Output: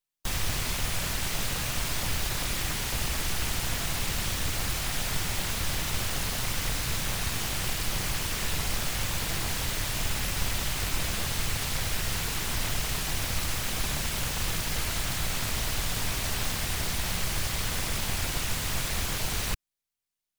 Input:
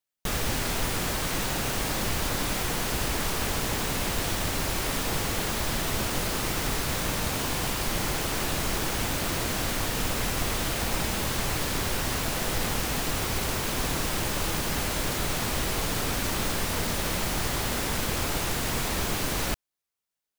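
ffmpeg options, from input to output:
ffmpeg -i in.wav -filter_complex "[0:a]acrossover=split=190|1600|2100[link_01][link_02][link_03][link_04];[link_02]aeval=exprs='abs(val(0))':channel_layout=same[link_05];[link_01][link_05][link_03][link_04]amix=inputs=4:normalize=0" -ar 44100 -c:a nellymoser out.flv

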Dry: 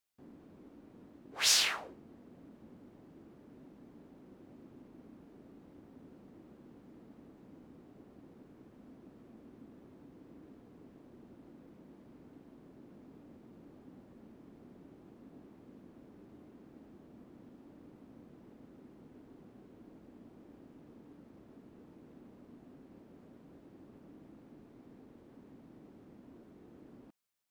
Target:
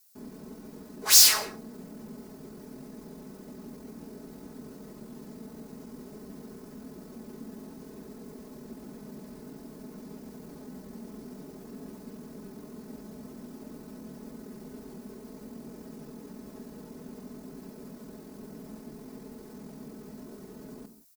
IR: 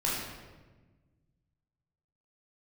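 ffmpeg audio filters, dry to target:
-filter_complex "[0:a]aecho=1:1:4.7:0.97,atempo=1.3,acontrast=86,asoftclip=type=tanh:threshold=-25.5dB,aexciter=amount=5.8:drive=1.4:freq=4400,asplit=2[link_01][link_02];[1:a]atrim=start_sample=2205,afade=type=out:start_time=0.24:duration=0.01,atrim=end_sample=11025[link_03];[link_02][link_03]afir=irnorm=-1:irlink=0,volume=-15.5dB[link_04];[link_01][link_04]amix=inputs=2:normalize=0"

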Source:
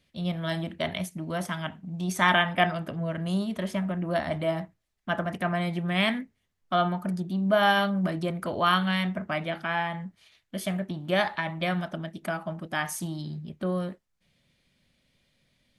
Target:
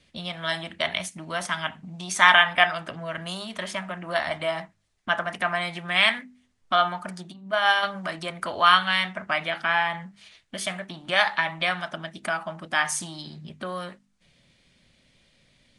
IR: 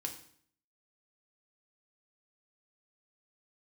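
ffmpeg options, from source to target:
-filter_complex "[0:a]asplit=3[link_01][link_02][link_03];[link_01]afade=type=out:start_time=7.31:duration=0.02[link_04];[link_02]agate=range=-33dB:threshold=-16dB:ratio=3:detection=peak,afade=type=in:start_time=7.31:duration=0.02,afade=type=out:start_time=7.82:duration=0.02[link_05];[link_03]afade=type=in:start_time=7.82:duration=0.02[link_06];[link_04][link_05][link_06]amix=inputs=3:normalize=0,bandreject=frequency=50:width_type=h:width=6,bandreject=frequency=100:width_type=h:width=6,bandreject=frequency=150:width_type=h:width=6,bandreject=frequency=200:width_type=h:width=6,bandreject=frequency=250:width_type=h:width=6,acrossover=split=760|6000[link_07][link_08][link_09];[link_07]acompressor=threshold=-47dB:ratio=5[link_10];[link_10][link_08][link_09]amix=inputs=3:normalize=0,volume=7.5dB" -ar 22050 -c:a libvorbis -b:a 48k

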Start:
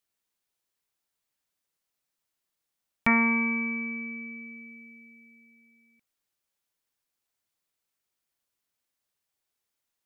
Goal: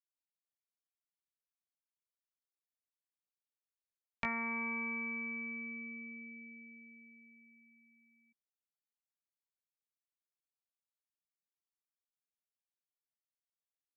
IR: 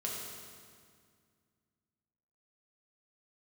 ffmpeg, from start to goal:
-filter_complex "[0:a]acrossover=split=400|1300[link_01][link_02][link_03];[link_01]acompressor=threshold=-42dB:ratio=4[link_04];[link_02]acompressor=threshold=-36dB:ratio=4[link_05];[link_03]acompressor=threshold=-34dB:ratio=4[link_06];[link_04][link_05][link_06]amix=inputs=3:normalize=0,afftdn=noise_reduction=18:noise_floor=-59,atempo=0.72,volume=-6dB"

